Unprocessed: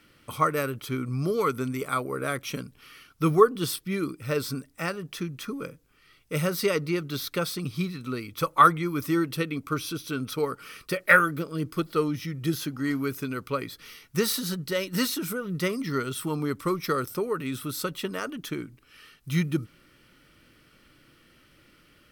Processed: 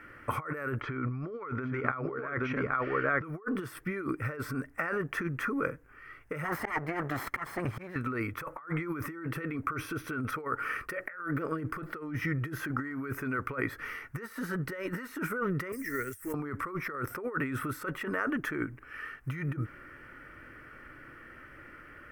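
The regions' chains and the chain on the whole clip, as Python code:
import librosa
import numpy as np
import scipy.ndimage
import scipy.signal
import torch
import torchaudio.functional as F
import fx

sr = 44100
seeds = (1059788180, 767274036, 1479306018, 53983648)

y = fx.chain(x, sr, fx.lowpass(hz=4600.0, slope=24),
    fx.echo_single(ms=820, db=-7.0), at=(0.81, 3.24))
y = fx.chain(y, sr, fx.lower_of_two(delay_ms=0.95),
    fx.highpass(hz=110.0, slope=6),
    fx.auto_swell(attack_ms=326.0), at=(6.44, 7.96))
y = fx.chain(y, sr, fx.block_float(bits=5),
    fx.curve_eq(hz=(100.0, 150.0, 280.0, 520.0, 770.0, 1300.0, 1900.0, 3500.0, 5800.0, 15000.0), db=(0, -24, -12, -12, -24, -20, -7, -17, 4, 11)), at=(15.72, 16.34))
y = fx.peak_eq(y, sr, hz=180.0, db=-8.5, octaves=0.63)
y = fx.over_compress(y, sr, threshold_db=-37.0, ratio=-1.0)
y = fx.high_shelf_res(y, sr, hz=2600.0, db=-14.0, q=3.0)
y = y * librosa.db_to_amplitude(1.0)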